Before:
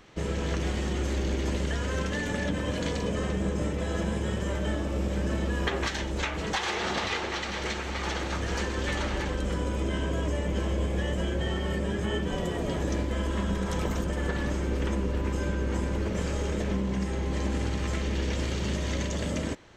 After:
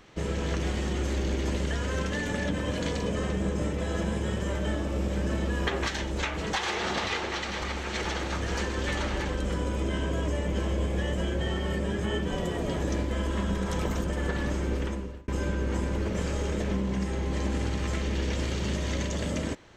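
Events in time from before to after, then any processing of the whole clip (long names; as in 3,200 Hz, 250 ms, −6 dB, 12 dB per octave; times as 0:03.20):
0:07.62–0:08.05: reverse
0:14.73–0:15.28: fade out linear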